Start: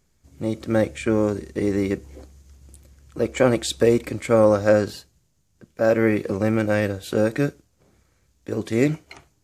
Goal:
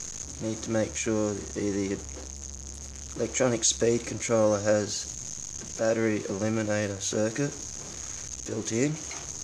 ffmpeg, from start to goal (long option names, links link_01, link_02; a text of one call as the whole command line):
ffmpeg -i in.wav -af "aeval=exprs='val(0)+0.5*0.0316*sgn(val(0))':channel_layout=same,lowpass=frequency=6500:width_type=q:width=11,bandreject=frequency=47.34:width_type=h:width=4,bandreject=frequency=94.68:width_type=h:width=4,volume=-8dB" out.wav